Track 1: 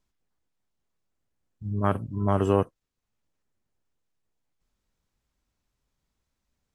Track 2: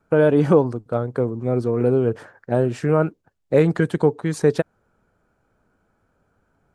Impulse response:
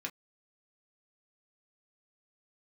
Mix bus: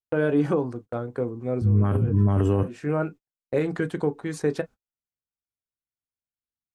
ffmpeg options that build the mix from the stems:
-filter_complex "[0:a]equalizer=frequency=110:width_type=o:width=2.9:gain=11,volume=2.5dB,asplit=3[link_01][link_02][link_03];[link_02]volume=-9.5dB[link_04];[1:a]volume=-8.5dB,asplit=2[link_05][link_06];[link_06]volume=-4.5dB[link_07];[link_03]apad=whole_len=297323[link_08];[link_05][link_08]sidechaincompress=threshold=-35dB:ratio=8:attack=6.3:release=157[link_09];[2:a]atrim=start_sample=2205[link_10];[link_04][link_07]amix=inputs=2:normalize=0[link_11];[link_11][link_10]afir=irnorm=-1:irlink=0[link_12];[link_01][link_09][link_12]amix=inputs=3:normalize=0,agate=range=-38dB:threshold=-39dB:ratio=16:detection=peak,alimiter=limit=-13dB:level=0:latency=1:release=56"

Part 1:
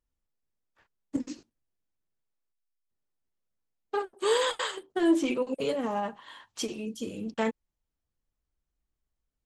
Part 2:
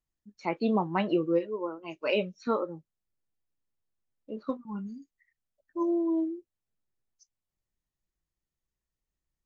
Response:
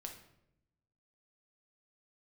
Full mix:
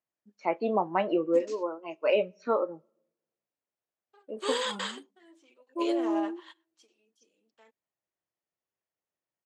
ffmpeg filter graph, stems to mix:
-filter_complex "[0:a]aemphasis=mode=production:type=bsi,adelay=200,volume=-4dB[link_01];[1:a]equalizer=frequency=100:width_type=o:width=0.67:gain=11,equalizer=frequency=630:width_type=o:width=0.67:gain=6,equalizer=frequency=4000:width_type=o:width=0.67:gain=-8,volume=0dB,asplit=3[link_02][link_03][link_04];[link_03]volume=-20.5dB[link_05];[link_04]apad=whole_len=425754[link_06];[link_01][link_06]sidechaingate=range=-26dB:threshold=-54dB:ratio=16:detection=peak[link_07];[2:a]atrim=start_sample=2205[link_08];[link_05][link_08]afir=irnorm=-1:irlink=0[link_09];[link_07][link_02][link_09]amix=inputs=3:normalize=0,highpass=330,lowpass=5100"

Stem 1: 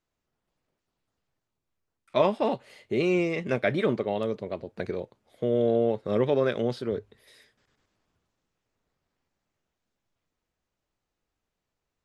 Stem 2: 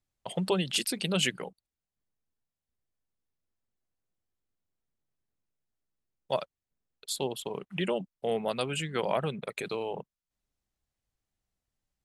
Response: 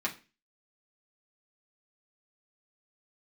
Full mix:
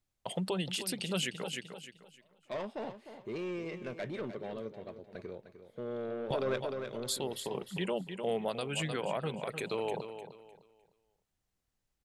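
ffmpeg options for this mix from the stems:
-filter_complex "[0:a]asoftclip=type=tanh:threshold=-21.5dB,adelay=50,volume=-0.5dB,asplit=2[link_01][link_02];[link_02]volume=-10.5dB[link_03];[1:a]volume=1dB,asplit=3[link_04][link_05][link_06];[link_05]volume=-12dB[link_07];[link_06]apad=whole_len=533435[link_08];[link_01][link_08]sidechaingate=range=-45dB:threshold=-49dB:ratio=16:detection=peak[link_09];[link_03][link_07]amix=inputs=2:normalize=0,aecho=0:1:304|608|912|1216:1|0.28|0.0784|0.022[link_10];[link_09][link_04][link_10]amix=inputs=3:normalize=0,alimiter=limit=-22.5dB:level=0:latency=1:release=321"

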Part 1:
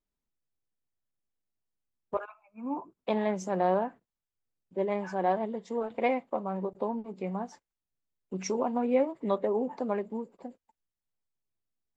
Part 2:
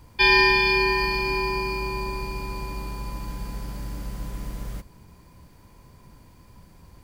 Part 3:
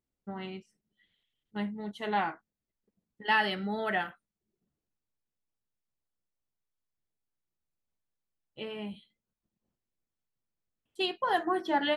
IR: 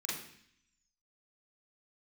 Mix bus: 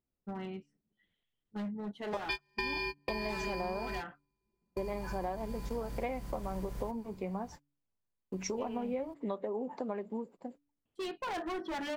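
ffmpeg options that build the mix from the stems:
-filter_complex "[0:a]agate=range=-25dB:threshold=-51dB:ratio=16:detection=peak,volume=-1dB,asplit=2[link_01][link_02];[1:a]asoftclip=type=hard:threshold=-11dB,adelay=2100,volume=-6dB[link_03];[2:a]lowpass=frequency=1300:poles=1,volume=34.5dB,asoftclip=hard,volume=-34.5dB,volume=0dB[link_04];[link_02]apad=whole_len=403022[link_05];[link_03][link_05]sidechaingate=range=-49dB:threshold=-47dB:ratio=16:detection=peak[link_06];[link_01][link_06][link_04]amix=inputs=3:normalize=0,bandreject=frequency=143.7:width_type=h:width=4,bandreject=frequency=287.4:width_type=h:width=4,acompressor=threshold=-33dB:ratio=6"

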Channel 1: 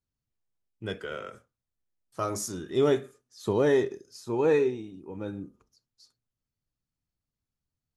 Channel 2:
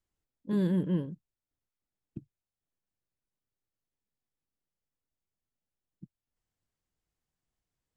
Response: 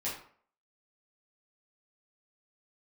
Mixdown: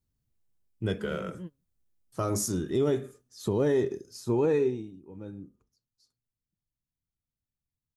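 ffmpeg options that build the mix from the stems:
-filter_complex "[0:a]lowshelf=frequency=440:gain=10.5,volume=-1dB,afade=type=out:start_time=4.47:duration=0.54:silence=0.251189,asplit=2[link_01][link_02];[1:a]adelay=500,volume=-12dB[link_03];[link_02]apad=whole_len=373252[link_04];[link_03][link_04]sidechaingate=range=-28dB:threshold=-54dB:ratio=16:detection=peak[link_05];[link_01][link_05]amix=inputs=2:normalize=0,highshelf=frequency=6900:gain=7.5,alimiter=limit=-17.5dB:level=0:latency=1:release=171"

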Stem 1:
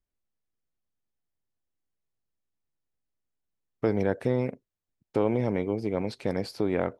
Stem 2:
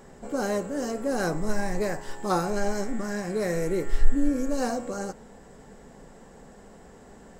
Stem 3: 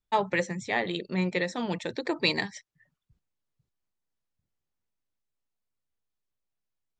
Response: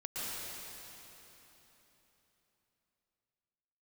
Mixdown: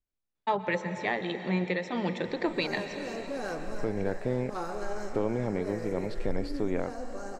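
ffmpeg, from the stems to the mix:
-filter_complex "[0:a]volume=-3.5dB,asplit=2[link_01][link_02];[1:a]equalizer=frequency=180:width_type=o:width=0.98:gain=-8.5,asoftclip=type=tanh:threshold=-16dB,adelay=2250,volume=-8dB,asplit=2[link_03][link_04];[link_04]volume=-8dB[link_05];[2:a]highpass=110,highshelf=frequency=8600:gain=-11,adelay=350,volume=-0.5dB,asplit=2[link_06][link_07];[link_07]volume=-11.5dB[link_08];[link_02]apad=whole_len=425482[link_09];[link_03][link_09]sidechaincompress=threshold=-32dB:ratio=8:attack=44:release=427[link_10];[3:a]atrim=start_sample=2205[link_11];[link_05][link_08]amix=inputs=2:normalize=0[link_12];[link_12][link_11]afir=irnorm=-1:irlink=0[link_13];[link_01][link_10][link_06][link_13]amix=inputs=4:normalize=0,highshelf=frequency=7100:gain=-11.5,alimiter=limit=-16.5dB:level=0:latency=1:release=336"

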